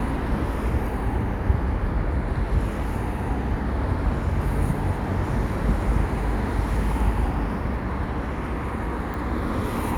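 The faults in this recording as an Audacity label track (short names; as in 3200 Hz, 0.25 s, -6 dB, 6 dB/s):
9.140000	9.140000	pop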